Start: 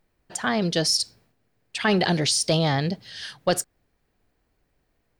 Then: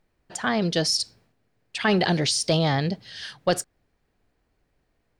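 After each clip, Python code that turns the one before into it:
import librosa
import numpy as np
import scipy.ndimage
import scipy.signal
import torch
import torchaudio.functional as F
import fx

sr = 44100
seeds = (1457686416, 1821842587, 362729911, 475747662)

y = fx.high_shelf(x, sr, hz=11000.0, db=-10.0)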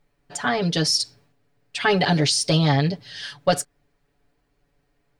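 y = x + 0.89 * np.pad(x, (int(7.0 * sr / 1000.0), 0))[:len(x)]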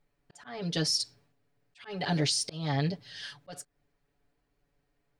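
y = fx.auto_swell(x, sr, attack_ms=333.0)
y = y * librosa.db_to_amplitude(-7.5)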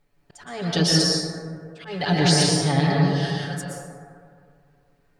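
y = fx.rev_plate(x, sr, seeds[0], rt60_s=2.2, hf_ratio=0.3, predelay_ms=105, drr_db=-3.5)
y = y * librosa.db_to_amplitude(6.5)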